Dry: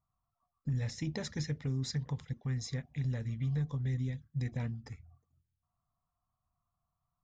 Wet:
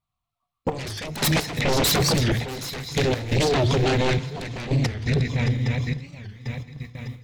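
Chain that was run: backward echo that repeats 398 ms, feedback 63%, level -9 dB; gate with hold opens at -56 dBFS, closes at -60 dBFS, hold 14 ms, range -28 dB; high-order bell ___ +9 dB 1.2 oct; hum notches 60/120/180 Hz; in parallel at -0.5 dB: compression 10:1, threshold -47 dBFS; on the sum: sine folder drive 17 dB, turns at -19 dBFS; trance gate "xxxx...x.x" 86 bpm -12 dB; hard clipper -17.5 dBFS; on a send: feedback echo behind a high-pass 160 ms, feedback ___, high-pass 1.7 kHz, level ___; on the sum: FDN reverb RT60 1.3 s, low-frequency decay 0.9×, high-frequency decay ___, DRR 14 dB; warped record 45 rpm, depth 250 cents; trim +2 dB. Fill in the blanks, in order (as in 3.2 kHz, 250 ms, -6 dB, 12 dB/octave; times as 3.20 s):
3 kHz, 81%, -20 dB, 0.4×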